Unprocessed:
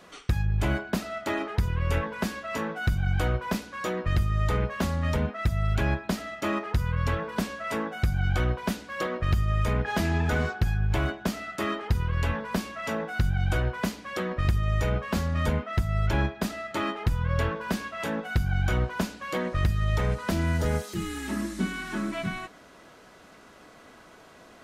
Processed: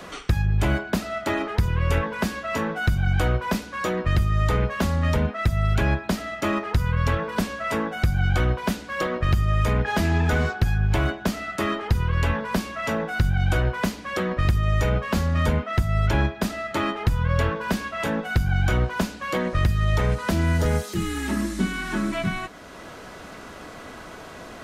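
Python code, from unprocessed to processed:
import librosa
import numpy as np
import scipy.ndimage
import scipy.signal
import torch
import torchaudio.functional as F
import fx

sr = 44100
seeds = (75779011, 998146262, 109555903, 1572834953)

y = fx.band_squash(x, sr, depth_pct=40)
y = F.gain(torch.from_numpy(y), 4.0).numpy()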